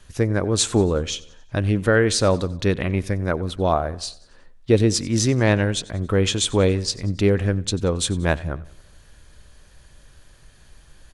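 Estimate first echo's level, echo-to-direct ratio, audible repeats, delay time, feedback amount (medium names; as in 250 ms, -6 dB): -21.0 dB, -19.5 dB, 3, 92 ms, 51%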